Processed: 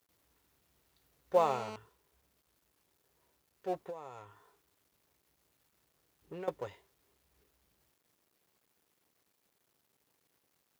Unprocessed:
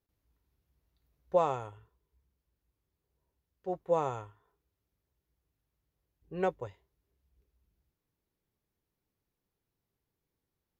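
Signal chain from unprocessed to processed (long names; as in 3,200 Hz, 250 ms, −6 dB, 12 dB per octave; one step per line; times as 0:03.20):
mu-law and A-law mismatch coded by mu
high-pass filter 320 Hz 6 dB per octave
0:01.36–0:01.76: phone interference −44 dBFS
0:03.75–0:06.48: downward compressor 16 to 1, threshold −41 dBFS, peak gain reduction 18.5 dB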